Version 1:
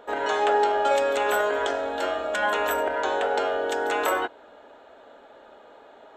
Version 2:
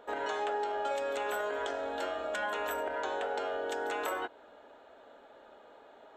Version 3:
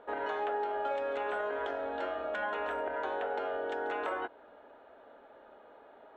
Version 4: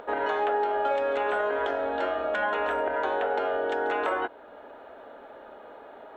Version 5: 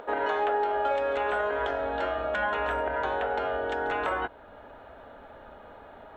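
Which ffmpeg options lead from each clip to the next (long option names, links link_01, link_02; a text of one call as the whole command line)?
ffmpeg -i in.wav -af "acompressor=threshold=-26dB:ratio=3,volume=-6dB" out.wav
ffmpeg -i in.wav -af "lowpass=2400" out.wav
ffmpeg -i in.wav -af "acompressor=mode=upward:threshold=-48dB:ratio=2.5,volume=7.5dB" out.wav
ffmpeg -i in.wav -af "asubboost=boost=8:cutoff=130" out.wav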